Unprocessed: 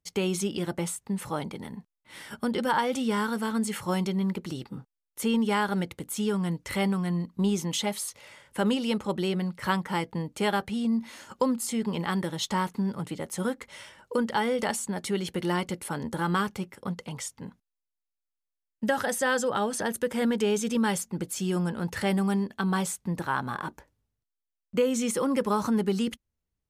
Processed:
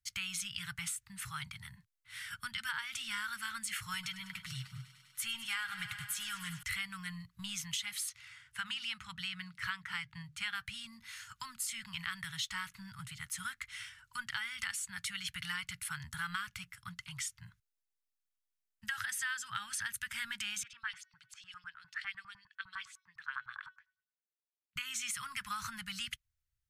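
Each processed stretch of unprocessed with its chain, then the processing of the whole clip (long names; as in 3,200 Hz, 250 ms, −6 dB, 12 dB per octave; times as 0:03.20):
0:03.93–0:06.63: comb filter 7.4 ms, depth 54% + feedback echo with a high-pass in the loop 100 ms, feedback 84%, high-pass 180 Hz, level −15 dB
0:08.09–0:10.55: high-pass filter 50 Hz + high-shelf EQ 9,400 Hz −12 dB + mains-hum notches 50/100/150/200/250/300/350 Hz
0:20.63–0:24.76: high-shelf EQ 5,000 Hz −9 dB + hum removal 372.2 Hz, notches 16 + auto-filter band-pass saw up 9.9 Hz 840–5,600 Hz
whole clip: elliptic band-stop filter 120–1,400 Hz, stop band 80 dB; dynamic equaliser 2,400 Hz, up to +5 dB, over −49 dBFS, Q 1.2; downward compressor, threshold −33 dBFS; level −1.5 dB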